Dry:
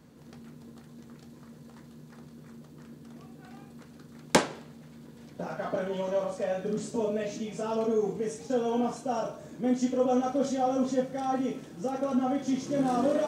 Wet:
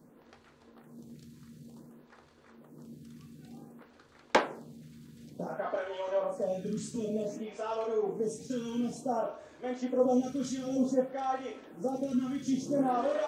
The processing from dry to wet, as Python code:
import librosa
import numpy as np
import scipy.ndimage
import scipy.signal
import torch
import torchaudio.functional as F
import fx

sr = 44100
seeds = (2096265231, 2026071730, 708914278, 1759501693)

y = fx.stagger_phaser(x, sr, hz=0.55)